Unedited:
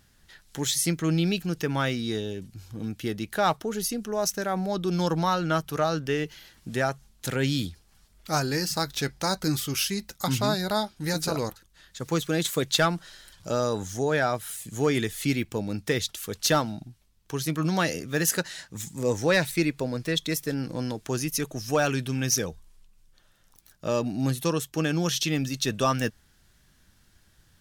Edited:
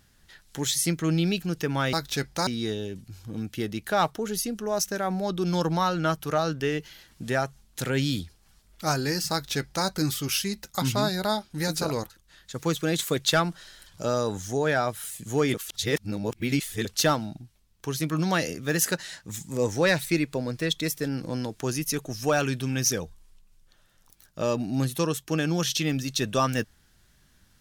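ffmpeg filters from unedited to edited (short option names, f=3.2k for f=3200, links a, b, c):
-filter_complex "[0:a]asplit=5[a][b][c][d][e];[a]atrim=end=1.932[f];[b]atrim=start=8.778:end=9.322[g];[c]atrim=start=1.928:end=15.002[h];[d]atrim=start=14.998:end=16.312,asetpts=PTS-STARTPTS,areverse[i];[e]atrim=start=16.308[j];[f][g]acrossfade=d=0.004:c1=hsin:c2=hsin[k];[k][h]acrossfade=d=0.004:c1=hsin:c2=hsin[l];[l][i]acrossfade=d=0.004:c1=hsin:c2=hsin[m];[m][j]acrossfade=d=0.004:c1=hsin:c2=hsin"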